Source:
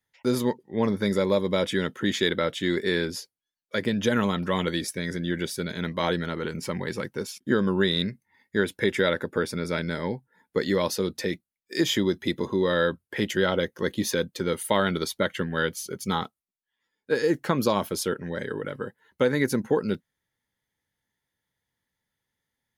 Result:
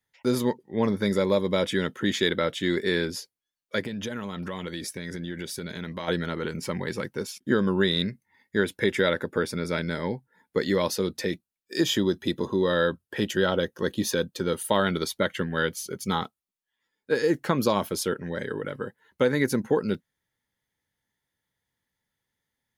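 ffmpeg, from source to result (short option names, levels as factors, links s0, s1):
-filter_complex "[0:a]asplit=3[s0][s1][s2];[s0]afade=t=out:st=3.81:d=0.02[s3];[s1]acompressor=threshold=0.0316:ratio=4:attack=3.2:release=140:knee=1:detection=peak,afade=t=in:st=3.81:d=0.02,afade=t=out:st=6.07:d=0.02[s4];[s2]afade=t=in:st=6.07:d=0.02[s5];[s3][s4][s5]amix=inputs=3:normalize=0,asettb=1/sr,asplit=3[s6][s7][s8];[s6]atrim=end=11.314[s9];[s7]atrim=start=11.31:end=14.84,asetpts=PTS-STARTPTS,afade=t=in:d=0.004:c=qsin,afade=t=out:st=3.526:d=0.004:c=qsin,bandreject=f=2100:w=5.7[s10];[s8]atrim=start=14.836[s11];[s9][s10]acrossfade=d=0.004:c1=hsin:c2=qsin[s12];[s12][s11]acrossfade=d=0.004:c1=qsin:c2=hsin"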